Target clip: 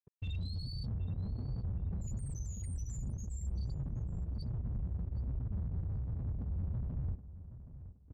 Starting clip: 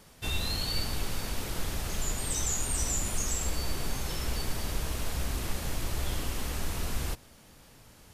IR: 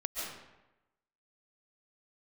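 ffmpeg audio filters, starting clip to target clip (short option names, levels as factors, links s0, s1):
-filter_complex "[0:a]highpass=f=41:w=0.5412,highpass=f=41:w=1.3066,aeval=exprs='0.126*(cos(1*acos(clip(val(0)/0.126,-1,1)))-cos(1*PI/2))+0.0251*(cos(3*acos(clip(val(0)/0.126,-1,1)))-cos(3*PI/2))+0.02*(cos(5*acos(clip(val(0)/0.126,-1,1)))-cos(5*PI/2))':c=same,asuperstop=centerf=790:order=12:qfactor=0.53,bass=f=250:g=7,treble=f=4000:g=2,acompressor=mode=upward:threshold=0.0316:ratio=2.5,afftfilt=real='re*gte(hypot(re,im),0.112)':imag='im*gte(hypot(re,im),0.112)':win_size=1024:overlap=0.75,flanger=delay=7.6:depth=4:regen=42:speed=1.3:shape=sinusoidal,aeval=exprs='sgn(val(0))*max(abs(val(0))-0.00355,0)':c=same,alimiter=level_in=3.35:limit=0.0631:level=0:latency=1:release=16,volume=0.299,aemphasis=mode=reproduction:type=75fm,asplit=2[s0][s1];[s1]adelay=772,lowpass=f=2300:p=1,volume=0.224,asplit=2[s2][s3];[s3]adelay=772,lowpass=f=2300:p=1,volume=0.27,asplit=2[s4][s5];[s5]adelay=772,lowpass=f=2300:p=1,volume=0.27[s6];[s0][s2][s4][s6]amix=inputs=4:normalize=0,volume=1.33"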